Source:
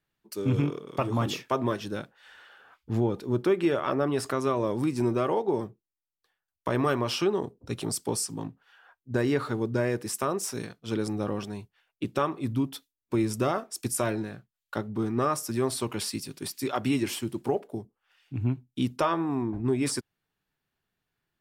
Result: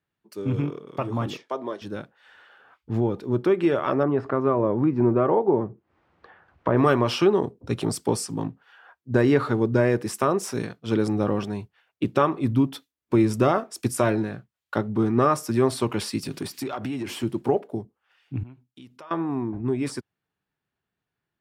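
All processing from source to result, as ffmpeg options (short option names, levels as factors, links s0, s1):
-filter_complex "[0:a]asettb=1/sr,asplit=3[s0][s1][s2];[s0]atrim=end=1.374[s3];[s1]atrim=start=1.37:end=1.82,asetpts=PTS-STARTPTS,afade=t=in:d=0.004:c=qsin,afade=t=out:st=0.446:d=0.004:c=qsin,highpass=370,lowpass=7700,equalizer=f=1600:w=1.2:g=-6.5,bandreject=f=2600:w=7.5[s4];[s2]atrim=start=1.816[s5];[s3][s4]acrossfade=d=0.004:c1=hsin:c2=qsin[s6];[s6][s5]acrossfade=d=0.004:c1=qsin:c2=hsin,asettb=1/sr,asplit=3[s7][s8][s9];[s7]atrim=end=4.034[s10];[s8]atrim=start=4.03:end=6.77,asetpts=PTS-STARTPTS,afade=t=in:d=0.004:c=qsin,afade=t=out:st=2.736:d=0.004:c=qsin,lowpass=1500,acompressor=mode=upward:threshold=0.02:ratio=2.5:attack=3.2:release=140:knee=2.83:detection=peak[s11];[s9]atrim=start=6.766[s12];[s10][s11]acrossfade=d=0.004:c1=hsin:c2=qsin[s13];[s13][s12]acrossfade=d=0.004:c1=qsin:c2=hsin,asettb=1/sr,asplit=3[s14][s15][s16];[s14]atrim=end=16.234[s17];[s15]atrim=start=16.23:end=17.23,asetpts=PTS-STARTPTS,afade=t=in:d=0.004:c=qsin,afade=t=out:st=0.996:d=0.004:c=qsin,acompressor=threshold=0.0126:ratio=16:attack=3.2:release=140:knee=1:detection=peak,aeval=exprs='0.0376*sin(PI/2*1.58*val(0)/0.0376)':c=same[s18];[s16]atrim=start=17.226[s19];[s17][s18]acrossfade=d=0.004:c1=hsin:c2=qsin[s20];[s20][s19]acrossfade=d=0.004:c1=qsin:c2=hsin,asettb=1/sr,asplit=3[s21][s22][s23];[s21]atrim=end=18.434[s24];[s22]atrim=start=18.43:end=19.11,asetpts=PTS-STARTPTS,afade=t=in:d=0.004:c=qsin,afade=t=out:st=0.676:d=0.004:c=qsin,lowshelf=f=490:g=-10.5,acompressor=threshold=0.00398:ratio=3:attack=3.2:release=140:knee=1:detection=peak[s25];[s23]atrim=start=19.106[s26];[s24][s25]acrossfade=d=0.004:c1=hsin:c2=qsin[s27];[s27][s26]acrossfade=d=0.004:c1=qsin:c2=hsin,highpass=56,highshelf=f=4100:g=-10.5,dynaudnorm=f=450:g=17:m=2.24"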